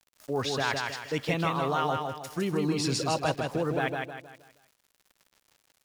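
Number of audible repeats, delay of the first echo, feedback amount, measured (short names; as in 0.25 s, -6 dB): 4, 0.158 s, 39%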